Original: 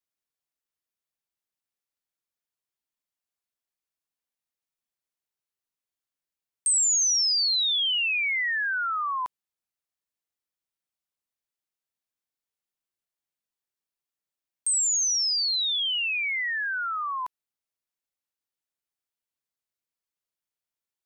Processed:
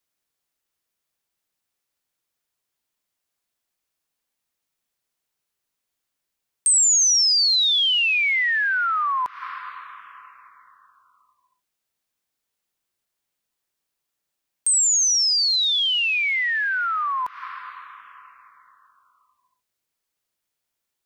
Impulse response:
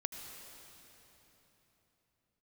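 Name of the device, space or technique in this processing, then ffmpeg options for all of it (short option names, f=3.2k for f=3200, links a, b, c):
ducked reverb: -filter_complex "[0:a]asplit=3[a][b][c];[1:a]atrim=start_sample=2205[d];[b][d]afir=irnorm=-1:irlink=0[e];[c]apad=whole_len=928465[f];[e][f]sidechaincompress=threshold=-45dB:ratio=8:attack=16:release=175,volume=-2.5dB[g];[a][g]amix=inputs=2:normalize=0,volume=5dB"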